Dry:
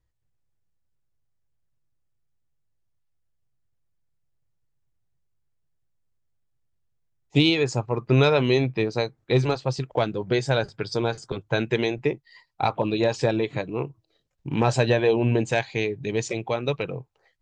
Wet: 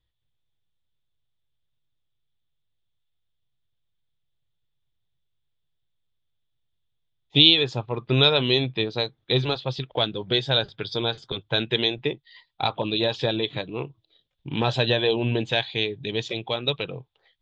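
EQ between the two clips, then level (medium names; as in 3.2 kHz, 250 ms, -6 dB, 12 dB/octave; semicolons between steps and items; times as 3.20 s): dynamic bell 2.2 kHz, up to -5 dB, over -45 dBFS, Q 6; resonant low-pass 3.5 kHz, resonance Q 8.9; -3.0 dB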